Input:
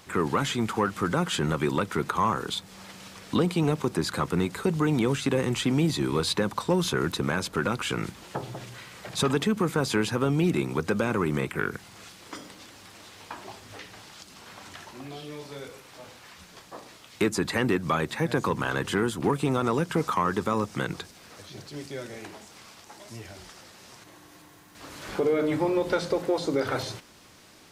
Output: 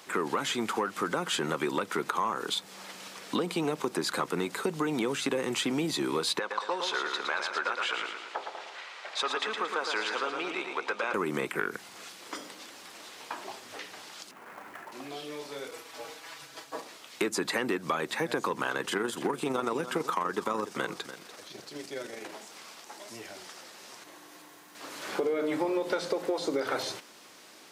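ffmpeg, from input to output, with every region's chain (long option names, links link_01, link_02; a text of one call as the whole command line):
ffmpeg -i in.wav -filter_complex "[0:a]asettb=1/sr,asplit=3[link_01][link_02][link_03];[link_01]atrim=end=6.394[link_04];[link_02]atrim=start=6.39:end=11.14,asetpts=PTS-STARTPTS,afade=type=in:duration=0.004:curve=qsin,afade=type=out:start_time=4.746:duration=0.004:curve=qsin,highpass=710,lowpass=4300,aecho=1:1:113|226|339|452|565|678|791:0.501|0.266|0.141|0.0746|0.0395|0.021|0.0111,atrim=end_sample=209475[link_05];[link_03]atrim=start=11.136[link_06];[link_04][link_05]acrossfade=duration=0.004:curve1=hsin:curve2=qsin[link_07];[link_07][link_06]acrossfade=duration=0.004:curve1=qsin:curve2=hsin,asettb=1/sr,asplit=3[link_08][link_09][link_10];[link_08]atrim=end=14.314[link_11];[link_09]atrim=start=14.31:end=14.92,asetpts=PTS-STARTPTS,afade=type=in:duration=0.004:curve=qsin,afade=type=out:start_time=0.606:duration=0.004:curve=qsin,lowpass=frequency=2100:width=0.5412,lowpass=frequency=2100:width=1.3066,acrusher=bits=3:mode=log:mix=0:aa=0.000001[link_12];[link_10]atrim=start=14.916[link_13];[link_11][link_12]acrossfade=duration=0.004:curve1=hsin:curve2=qsin[link_14];[link_14][link_13]acrossfade=duration=0.004:curve1=qsin:curve2=hsin,asettb=1/sr,asplit=3[link_15][link_16][link_17];[link_15]atrim=end=15.714[link_18];[link_16]atrim=start=15.71:end=16.82,asetpts=PTS-STARTPTS,afade=type=in:duration=0.004:curve=qsin,afade=type=out:start_time=1.106:duration=0.004:curve=qsin,agate=range=-33dB:threshold=-49dB:ratio=3:release=100:detection=peak,aecho=1:1:5.9:0.95,atrim=end_sample=48951,afreqshift=-40[link_19];[link_17]atrim=start=16.816[link_20];[link_18][link_19]acrossfade=duration=0.004:curve1=hsin:curve2=qsin[link_21];[link_21][link_20]acrossfade=duration=0.004:curve1=qsin:curve2=hsin,asettb=1/sr,asplit=3[link_22][link_23][link_24];[link_22]atrim=end=18.724[link_25];[link_23]atrim=start=18.72:end=22.32,asetpts=PTS-STARTPTS,afade=type=in:duration=0.004:curve=qsin,afade=type=out:start_time=3.596:duration=0.004:curve=qsin,tremolo=f=24:d=0.4,aecho=1:1:291:0.211,atrim=end_sample=158760[link_26];[link_24]atrim=start=22.316[link_27];[link_25][link_26]acrossfade=duration=0.004:curve1=hsin:curve2=qsin[link_28];[link_28][link_27]acrossfade=duration=0.004:curve1=qsin:curve2=hsin,highpass=300,acompressor=threshold=-27dB:ratio=6,volume=1.5dB" out.wav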